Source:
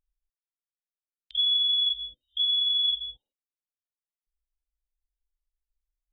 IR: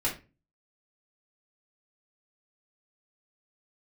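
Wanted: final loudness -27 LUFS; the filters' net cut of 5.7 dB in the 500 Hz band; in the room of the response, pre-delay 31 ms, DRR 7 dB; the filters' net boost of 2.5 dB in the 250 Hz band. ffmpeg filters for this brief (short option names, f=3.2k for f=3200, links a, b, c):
-filter_complex "[0:a]equalizer=f=250:t=o:g=5,equalizer=f=500:t=o:g=-7,asplit=2[a][b];[1:a]atrim=start_sample=2205,adelay=31[c];[b][c]afir=irnorm=-1:irlink=0,volume=-14.5dB[d];[a][d]amix=inputs=2:normalize=0,volume=-4dB"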